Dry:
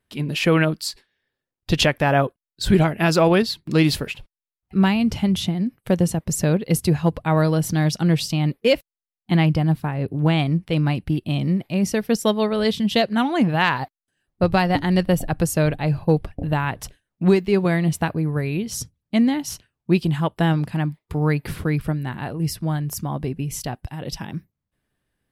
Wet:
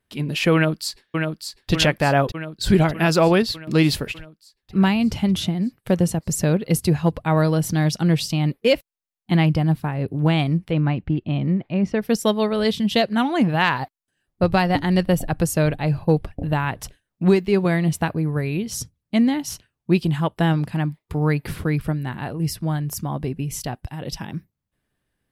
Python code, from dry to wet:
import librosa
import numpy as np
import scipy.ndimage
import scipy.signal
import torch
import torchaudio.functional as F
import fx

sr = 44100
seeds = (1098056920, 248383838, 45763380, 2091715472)

y = fx.echo_throw(x, sr, start_s=0.54, length_s=1.17, ms=600, feedback_pct=65, wet_db=-5.0)
y = fx.lowpass(y, sr, hz=2400.0, slope=12, at=(10.7, 12.01), fade=0.02)